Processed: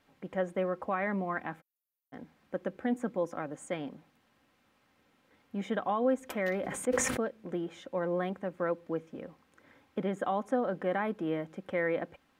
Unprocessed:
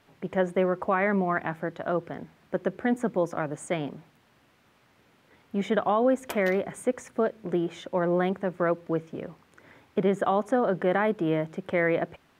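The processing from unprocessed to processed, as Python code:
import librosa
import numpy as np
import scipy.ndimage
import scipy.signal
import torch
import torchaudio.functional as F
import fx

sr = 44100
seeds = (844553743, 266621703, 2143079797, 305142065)

y = fx.cheby2_highpass(x, sr, hz=2800.0, order=4, stop_db=80, at=(1.6, 2.12), fade=0.02)
y = y + 0.38 * np.pad(y, (int(3.8 * sr / 1000.0), 0))[:len(y)]
y = fx.sustainer(y, sr, db_per_s=31.0, at=(6.48, 7.2))
y = y * 10.0 ** (-7.5 / 20.0)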